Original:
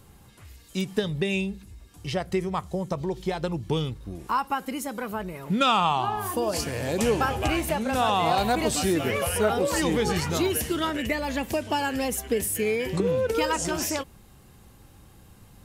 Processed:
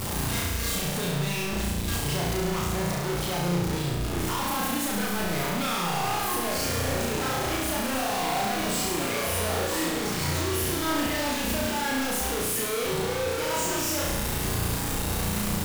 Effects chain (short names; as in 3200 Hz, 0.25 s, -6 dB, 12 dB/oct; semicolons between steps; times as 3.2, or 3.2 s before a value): infinite clipping; flutter echo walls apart 5.9 m, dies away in 1.1 s; gain -5 dB